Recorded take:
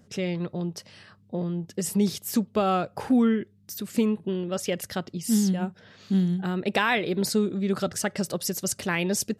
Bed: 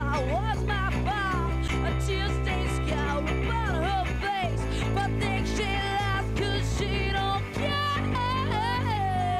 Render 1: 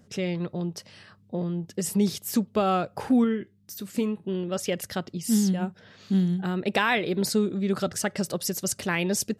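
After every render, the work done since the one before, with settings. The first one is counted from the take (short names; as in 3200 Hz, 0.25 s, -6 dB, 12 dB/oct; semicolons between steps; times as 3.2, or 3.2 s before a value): 3.24–4.34 resonator 64 Hz, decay 0.19 s, mix 50%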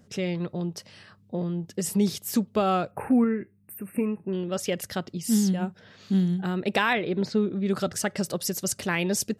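2.91–4.33 brick-wall FIR band-stop 2800–8100 Hz; 6.93–7.66 air absorption 200 m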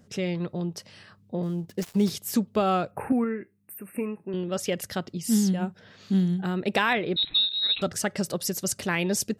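1.43–2.1 switching dead time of 0.063 ms; 3.12–4.34 low shelf 190 Hz -12 dB; 7.16–7.82 inverted band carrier 4000 Hz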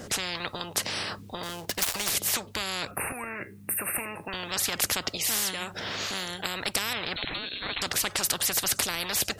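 in parallel at +1.5 dB: compressor, threshold -32 dBFS, peak gain reduction 13 dB; on the sum: spectral compressor 10:1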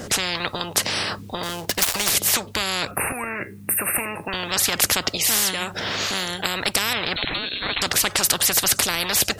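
gain +7.5 dB; limiter -2 dBFS, peak gain reduction 2 dB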